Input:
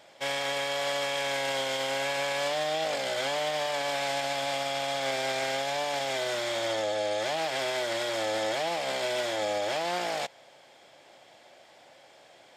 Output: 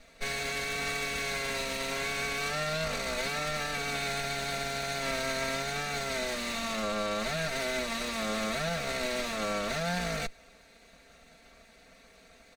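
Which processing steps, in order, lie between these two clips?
minimum comb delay 0.48 ms; low shelf 150 Hz +7.5 dB; comb 4.4 ms, depth 91%; gain -3 dB

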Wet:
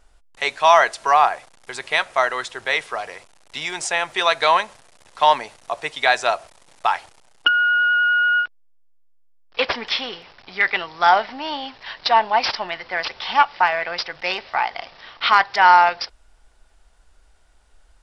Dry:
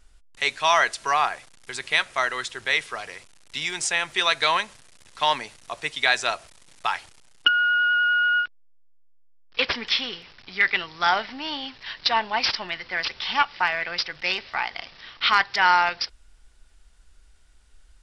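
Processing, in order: bell 720 Hz +10.5 dB 1.7 oct; gain -1 dB

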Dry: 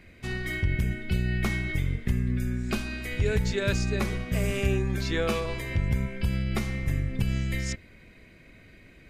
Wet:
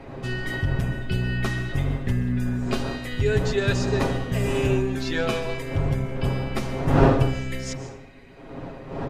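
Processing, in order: wind noise 520 Hz -34 dBFS; high shelf 11000 Hz -11 dB; notch 2200 Hz, Q 14; comb 7.4 ms; plate-style reverb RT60 0.56 s, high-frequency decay 0.85×, pre-delay 0.115 s, DRR 11.5 dB; gain +2 dB

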